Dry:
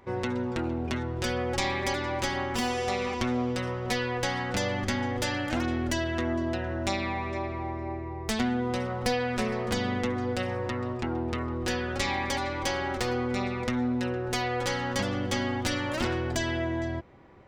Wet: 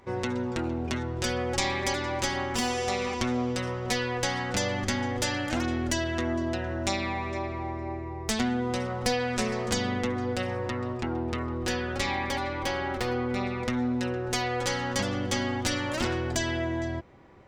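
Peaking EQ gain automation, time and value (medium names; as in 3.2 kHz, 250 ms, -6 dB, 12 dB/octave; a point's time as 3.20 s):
peaking EQ 7 kHz 1.2 oct
9.09 s +5.5 dB
9.62 s +12 dB
9.98 s +2 dB
11.76 s +2 dB
12.39 s -5.5 dB
13.34 s -5.5 dB
13.90 s +4.5 dB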